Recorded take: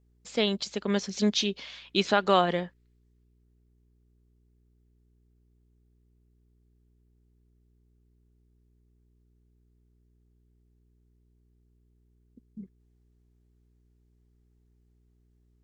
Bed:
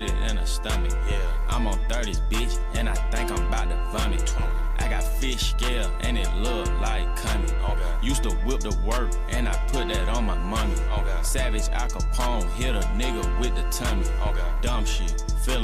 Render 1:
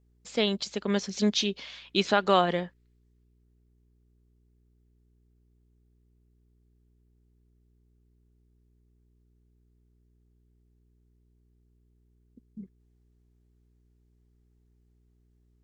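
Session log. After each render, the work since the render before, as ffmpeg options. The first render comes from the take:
-af anull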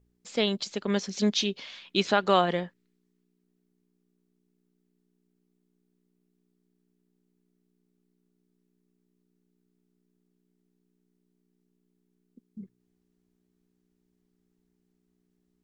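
-af "bandreject=f=60:t=h:w=4,bandreject=f=120:t=h:w=4"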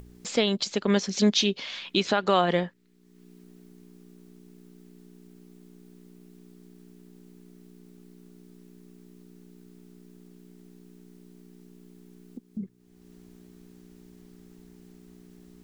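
-filter_complex "[0:a]asplit=2[a][b];[b]acompressor=mode=upward:threshold=-28dB:ratio=2.5,volume=-2.5dB[c];[a][c]amix=inputs=2:normalize=0,alimiter=limit=-10.5dB:level=0:latency=1:release=165"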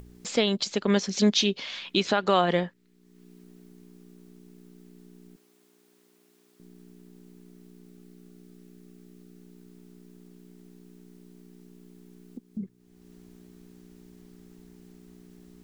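-filter_complex "[0:a]asettb=1/sr,asplit=3[a][b][c];[a]atrim=end=5.364[d];[b]atrim=start=5.36:end=6.6,asetpts=PTS-STARTPTS,afade=t=in:d=0.004:c=qsin,afade=t=out:st=1.236:d=0.004:c=qsin,highpass=570[e];[c]atrim=start=6.596[f];[d][e]acrossfade=d=0.004:c1=hsin:c2=qsin[g];[g][f]acrossfade=d=0.004:c1=qsin:c2=hsin,asettb=1/sr,asplit=3[h][i][j];[h]atrim=end=7.874[k];[i]atrim=start=7.87:end=9.43,asetpts=PTS-STARTPTS,afade=t=in:d=0.004:c=qsin,afade=t=out:st=1.556:d=0.004:c=qsin,asuperstop=centerf=960:order=4:qfactor=6[l];[j]atrim=start=9.426[m];[k][l]acrossfade=d=0.004:c1=hsin:c2=qsin[n];[n][m]acrossfade=d=0.004:c1=qsin:c2=hsin"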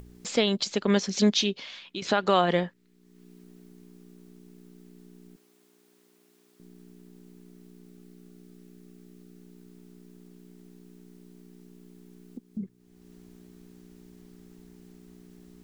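-filter_complex "[0:a]asplit=2[a][b];[a]atrim=end=2.02,asetpts=PTS-STARTPTS,afade=t=out:st=1.23:d=0.79:silence=0.223872[c];[b]atrim=start=2.02,asetpts=PTS-STARTPTS,afade=t=in:d=0.004:c=hsin:silence=0.223872[d];[c][d]concat=n=2:v=0:a=1"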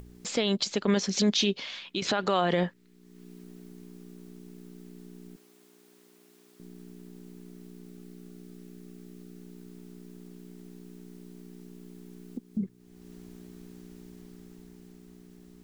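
-af "dynaudnorm=f=160:g=17:m=4dB,alimiter=limit=-15dB:level=0:latency=1:release=27"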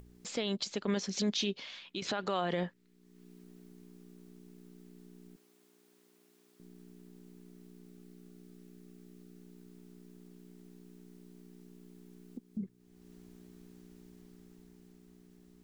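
-af "volume=-7.5dB"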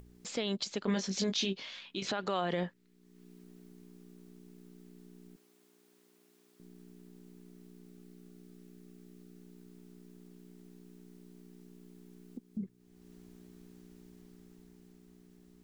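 -filter_complex "[0:a]asettb=1/sr,asplit=3[a][b][c];[a]atrim=end=0.814[d];[b]atrim=start=0.81:end=2.09,asetpts=PTS-STARTPTS,afade=t=in:d=0.004:c=qsin,afade=t=out:st=1.276:d=0.004:c=qsin,asplit=2[e][f];[f]adelay=21,volume=-6dB[g];[e][g]amix=inputs=2:normalize=0,atrim=end_sample=56448[h];[c]atrim=start=2.086[i];[d][h]acrossfade=d=0.004:c1=hsin:c2=qsin[j];[j][i]acrossfade=d=0.004:c1=qsin:c2=hsin"

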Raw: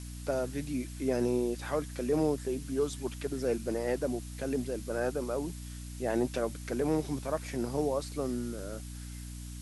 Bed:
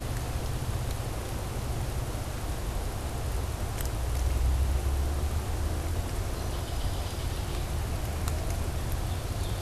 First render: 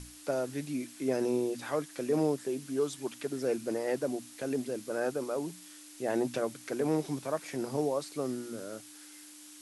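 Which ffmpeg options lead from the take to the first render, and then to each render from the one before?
-af "bandreject=f=60:t=h:w=6,bandreject=f=120:t=h:w=6,bandreject=f=180:t=h:w=6,bandreject=f=240:t=h:w=6"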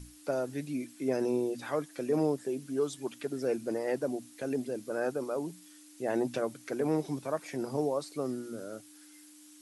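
-af "afftdn=nr=7:nf=-51"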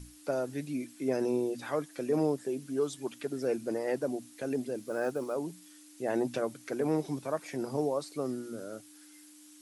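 -filter_complex "[0:a]asettb=1/sr,asplit=3[a][b][c];[a]atrim=end=4.784[d];[b]atrim=start=4.78:end=5.34,asetpts=PTS-STARTPTS,afade=t=in:d=0.004:c=qsin,afade=t=out:st=0.556:d=0.004:c=qsin,acrusher=bits=8:mode=log:mix=0:aa=0.000001[e];[c]atrim=start=5.336[f];[d][e]acrossfade=d=0.004:c1=hsin:c2=qsin[g];[g][f]acrossfade=d=0.004:c1=qsin:c2=hsin"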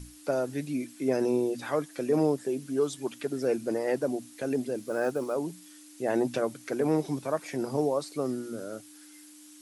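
-af "volume=3.5dB"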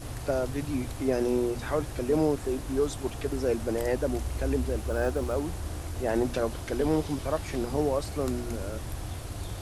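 -filter_complex "[1:a]volume=-5dB[a];[0:a][a]amix=inputs=2:normalize=0"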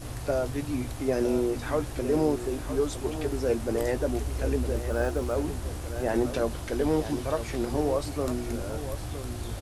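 -filter_complex "[0:a]asplit=2[a][b];[b]adelay=17,volume=-11dB[c];[a][c]amix=inputs=2:normalize=0,aecho=1:1:961:0.282"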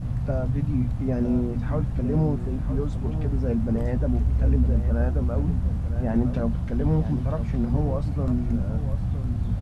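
-af "lowpass=f=1k:p=1,lowshelf=f=260:t=q:w=3:g=9"

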